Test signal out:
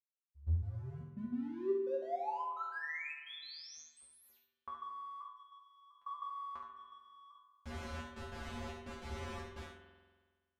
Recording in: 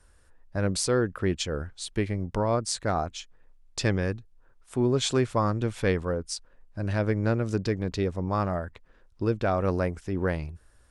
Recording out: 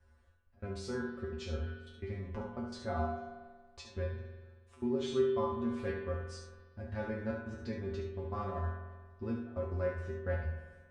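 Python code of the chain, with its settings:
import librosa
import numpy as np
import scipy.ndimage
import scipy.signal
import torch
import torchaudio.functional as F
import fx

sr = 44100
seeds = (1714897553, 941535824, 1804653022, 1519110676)

p1 = fx.law_mismatch(x, sr, coded='mu')
p2 = fx.high_shelf(p1, sr, hz=6200.0, db=6.5)
p3 = fx.rider(p2, sr, range_db=4, speed_s=2.0)
p4 = fx.step_gate(p3, sr, bpm=193, pattern='xxxx..x.x', floor_db=-24.0, edge_ms=4.5)
p5 = fx.spacing_loss(p4, sr, db_at_10k=25)
p6 = fx.comb_fb(p5, sr, f0_hz=78.0, decay_s=0.31, harmonics='odd', damping=0.0, mix_pct=100)
p7 = p6 + fx.echo_single(p6, sr, ms=71, db=-6.5, dry=0)
p8 = fx.rev_spring(p7, sr, rt60_s=1.5, pass_ms=(46,), chirp_ms=80, drr_db=5.5)
y = p8 * librosa.db_to_amplitude(2.5)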